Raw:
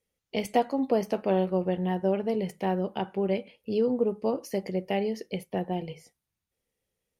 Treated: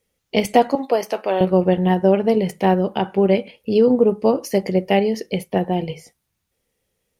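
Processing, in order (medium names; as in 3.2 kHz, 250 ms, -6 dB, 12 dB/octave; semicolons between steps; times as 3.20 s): 0.75–1.41 s: Bessel high-pass 620 Hz, order 2; in parallel at -1.5 dB: level held to a coarse grid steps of 9 dB; on the sum: trim +7 dB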